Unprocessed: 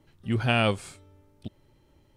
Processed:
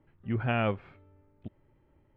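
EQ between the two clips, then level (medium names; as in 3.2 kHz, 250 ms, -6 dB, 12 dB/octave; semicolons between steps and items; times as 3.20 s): low-pass 2.3 kHz 24 dB/octave; -4.0 dB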